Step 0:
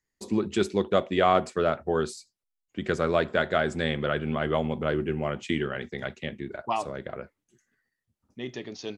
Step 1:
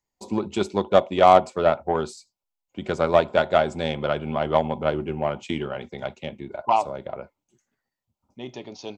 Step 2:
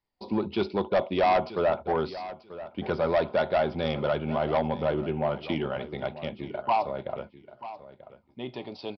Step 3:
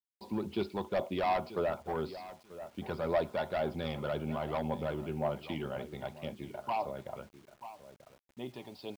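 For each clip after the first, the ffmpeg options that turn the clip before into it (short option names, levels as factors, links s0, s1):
-af "superequalizer=8b=2:9b=2.82:11b=0.398:16b=0.501,aeval=exprs='0.668*(cos(1*acos(clip(val(0)/0.668,-1,1)))-cos(1*PI/2))+0.0299*(cos(7*acos(clip(val(0)/0.668,-1,1)))-cos(7*PI/2))':c=same,volume=1.33"
-af "aresample=11025,asoftclip=type=tanh:threshold=0.126,aresample=44100,aecho=1:1:937|1874:0.178|0.0285"
-af "aphaser=in_gain=1:out_gain=1:delay=1.2:decay=0.31:speed=1.9:type=triangular,acrusher=bits=8:mix=0:aa=0.000001,volume=0.398"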